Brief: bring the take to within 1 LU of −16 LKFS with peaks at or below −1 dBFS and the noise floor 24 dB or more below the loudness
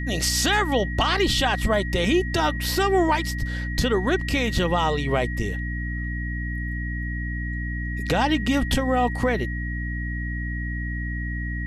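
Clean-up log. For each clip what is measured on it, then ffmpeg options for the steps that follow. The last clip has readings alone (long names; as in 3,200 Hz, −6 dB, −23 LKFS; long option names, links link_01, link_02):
mains hum 60 Hz; hum harmonics up to 300 Hz; level of the hum −26 dBFS; interfering tone 1,900 Hz; level of the tone −33 dBFS; integrated loudness −24.0 LKFS; sample peak −9.5 dBFS; target loudness −16.0 LKFS
→ -af "bandreject=frequency=60:width_type=h:width=4,bandreject=frequency=120:width_type=h:width=4,bandreject=frequency=180:width_type=h:width=4,bandreject=frequency=240:width_type=h:width=4,bandreject=frequency=300:width_type=h:width=4"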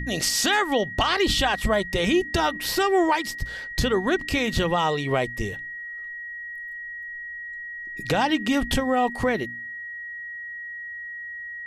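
mains hum none found; interfering tone 1,900 Hz; level of the tone −33 dBFS
→ -af "bandreject=frequency=1900:width=30"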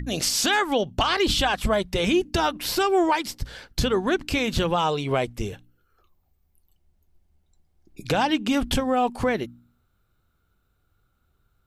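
interfering tone none found; integrated loudness −23.5 LKFS; sample peak −11.5 dBFS; target loudness −16.0 LKFS
→ -af "volume=7.5dB"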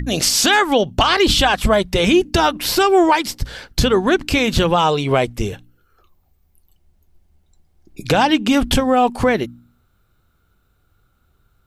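integrated loudness −16.0 LKFS; sample peak −4.0 dBFS; background noise floor −62 dBFS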